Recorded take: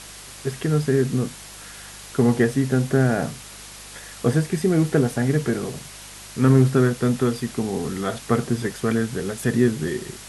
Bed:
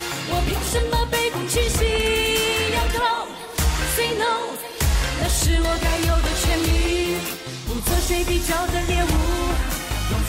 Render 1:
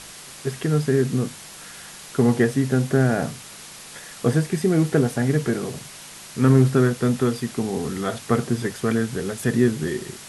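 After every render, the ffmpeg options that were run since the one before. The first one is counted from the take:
-af "bandreject=f=50:t=h:w=4,bandreject=f=100:t=h:w=4"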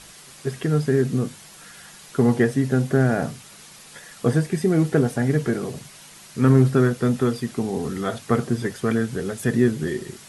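-af "afftdn=nr=6:nf=-41"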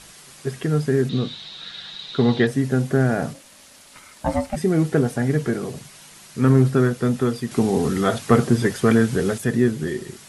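-filter_complex "[0:a]asettb=1/sr,asplit=3[a][b][c];[a]atrim=end=1.094[d];[b]atrim=start=1.09:end=2.47,asetpts=PTS-STARTPTS,afade=t=in:d=0.004:c=qsin,afade=t=out:st=1.376:d=0.004:c=qsin,lowpass=f=3.8k:t=q:w=13[e];[c]atrim=start=2.466[f];[d][e]acrossfade=d=0.004:c1=hsin:c2=qsin[g];[g][f]acrossfade=d=0.004:c1=qsin:c2=hsin,asplit=3[h][i][j];[h]afade=t=out:st=3.33:d=0.02[k];[i]aeval=exprs='val(0)*sin(2*PI*410*n/s)':c=same,afade=t=in:st=3.33:d=0.02,afade=t=out:st=4.55:d=0.02[l];[j]afade=t=in:st=4.55:d=0.02[m];[k][l][m]amix=inputs=3:normalize=0,asettb=1/sr,asplit=3[n][o][p];[n]atrim=end=7.514[q];[o]atrim=start=7.51:end=9.38,asetpts=PTS-STARTPTS,afade=t=in:d=0.004:c=qsin,afade=t=out:st=1.866:d=0.004:c=qsin,acontrast=56[r];[p]atrim=start=9.376[s];[q][r]acrossfade=d=0.004:c1=hsin:c2=qsin[t];[t][s]acrossfade=d=0.004:c1=qsin:c2=hsin"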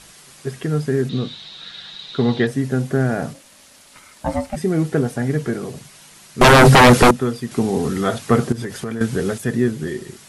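-filter_complex "[0:a]asettb=1/sr,asplit=3[a][b][c];[a]atrim=end=6.414[d];[b]atrim=start=6.41:end=7.11,asetpts=PTS-STARTPTS,afade=t=in:d=0.004:c=qsin,afade=t=out:st=0.696:d=0.004:c=qsin,aeval=exprs='0.562*sin(PI/2*7.08*val(0)/0.562)':c=same[e];[c]atrim=start=7.106[f];[d][e]acrossfade=d=0.004:c1=hsin:c2=qsin[g];[g][f]acrossfade=d=0.004:c1=qsin:c2=hsin,asettb=1/sr,asplit=3[h][i][j];[h]atrim=end=8.524[k];[i]atrim=start=8.52:end=9.01,asetpts=PTS-STARTPTS,afade=t=in:d=0.004:c=qsin,afade=t=out:st=0.486:d=0.004:c=qsin,acompressor=threshold=-23dB:ratio=6:attack=3.2:release=140:knee=1:detection=peak[l];[j]atrim=start=9.006[m];[k][l]acrossfade=d=0.004:c1=hsin:c2=qsin[n];[n][m]acrossfade=d=0.004:c1=qsin:c2=hsin"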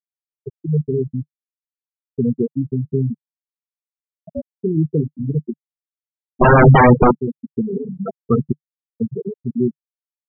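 -af "afftfilt=real='re*gte(hypot(re,im),0.708)':imag='im*gte(hypot(re,im),0.708)':win_size=1024:overlap=0.75,adynamicequalizer=threshold=0.0355:dfrequency=150:dqfactor=3.5:tfrequency=150:tqfactor=3.5:attack=5:release=100:ratio=0.375:range=2:mode=boostabove:tftype=bell"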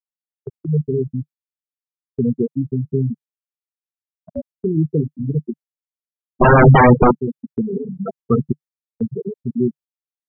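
-af "agate=range=-13dB:threshold=-38dB:ratio=16:detection=peak"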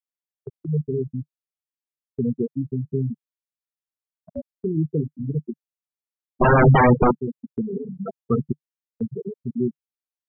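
-af "volume=-5dB"

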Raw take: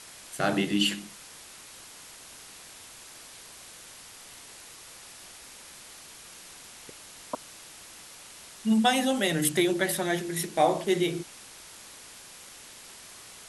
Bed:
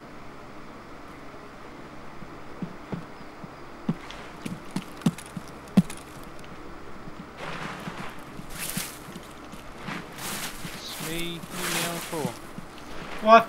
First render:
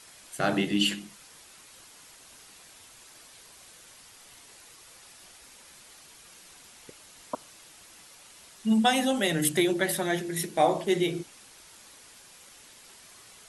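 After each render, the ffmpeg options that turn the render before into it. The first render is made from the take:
-af "afftdn=nr=6:nf=-48"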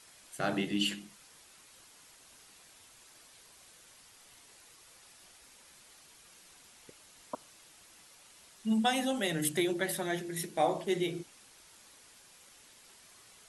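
-af "volume=-6dB"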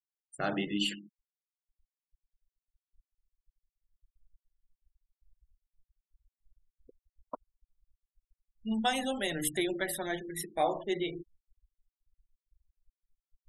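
-af "asubboost=boost=9:cutoff=50,afftfilt=real='re*gte(hypot(re,im),0.01)':imag='im*gte(hypot(re,im),0.01)':win_size=1024:overlap=0.75"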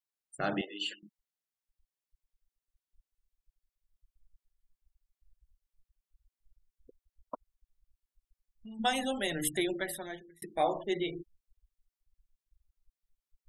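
-filter_complex "[0:a]asettb=1/sr,asplit=3[a][b][c];[a]atrim=end=0.614[d];[b]atrim=start=0.61:end=1.03,asetpts=PTS-STARTPTS,afade=t=in:d=0.004:c=qsin,afade=t=out:st=0.416:d=0.004:c=qsin,highpass=f=440:w=0.5412,highpass=f=440:w=1.3066,equalizer=f=660:t=q:w=4:g=9,equalizer=f=2.2k:t=q:w=4:g=-9,equalizer=f=3.3k:t=q:w=4:g=-3,equalizer=f=5.3k:t=q:w=4:g=-9,lowpass=f=6.7k:w=0.5412,lowpass=f=6.7k:w=1.3066[e];[c]atrim=start=1.026[f];[d][e]acrossfade=d=0.004:c1=hsin:c2=qsin[g];[g][f]acrossfade=d=0.004:c1=qsin:c2=hsin,asplit=3[h][i][j];[h]afade=t=out:st=7.34:d=0.02[k];[i]acompressor=threshold=-45dB:ratio=6:attack=3.2:release=140:knee=1:detection=peak,afade=t=in:st=7.34:d=0.02,afade=t=out:st=8.79:d=0.02[l];[j]afade=t=in:st=8.79:d=0.02[m];[k][l][m]amix=inputs=3:normalize=0,asplit=2[n][o];[n]atrim=end=10.42,asetpts=PTS-STARTPTS,afade=t=out:st=9.68:d=0.74[p];[o]atrim=start=10.42,asetpts=PTS-STARTPTS,afade=t=in:d=0.004:c=hsin[q];[p][q]concat=n=2:v=0:a=1"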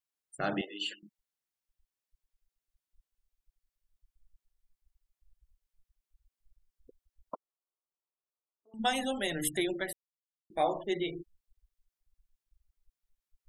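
-filter_complex "[0:a]asettb=1/sr,asplit=3[a][b][c];[a]atrim=end=7.344[d];[b]atrim=start=7.34:end=8.74,asetpts=PTS-STARTPTS,afade=t=in:d=0.004:c=qsin,afade=t=out:st=1.396:d=0.004:c=qsin,asuperpass=centerf=680:order=12:qfactor=0.69[e];[c]atrim=start=8.736[f];[d][e]acrossfade=d=0.004:c1=hsin:c2=qsin[g];[g][f]acrossfade=d=0.004:c1=qsin:c2=hsin,asplit=3[h][i][j];[h]atrim=end=9.93,asetpts=PTS-STARTPTS,afade=t=out:st=9.926:d=0.004:c=hsin[k];[i]atrim=start=9.93:end=10.5,asetpts=PTS-STARTPTS,volume=0[l];[j]atrim=start=10.5,asetpts=PTS-STARTPTS,afade=t=in:d=0.004:c=hsin[m];[k][l][m]concat=n=3:v=0:a=1"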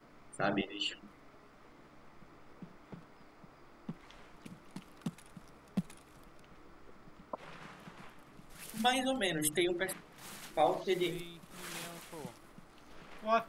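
-filter_complex "[1:a]volume=-16dB[a];[0:a][a]amix=inputs=2:normalize=0"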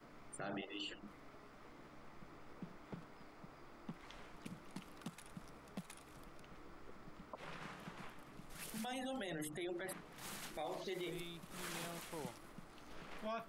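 -filter_complex "[0:a]acrossover=split=550|1400[a][b][c];[a]acompressor=threshold=-43dB:ratio=4[d];[b]acompressor=threshold=-43dB:ratio=4[e];[c]acompressor=threshold=-46dB:ratio=4[f];[d][e][f]amix=inputs=3:normalize=0,alimiter=level_in=11.5dB:limit=-24dB:level=0:latency=1:release=22,volume=-11.5dB"

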